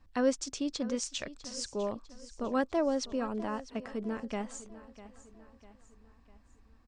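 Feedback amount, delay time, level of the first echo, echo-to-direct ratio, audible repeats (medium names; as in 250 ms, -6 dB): 47%, 650 ms, -16.0 dB, -15.0 dB, 3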